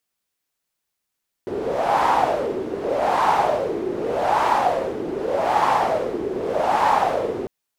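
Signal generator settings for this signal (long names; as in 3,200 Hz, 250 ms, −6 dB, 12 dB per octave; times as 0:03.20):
wind from filtered noise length 6.00 s, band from 370 Hz, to 910 Hz, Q 4.8, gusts 5, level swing 9 dB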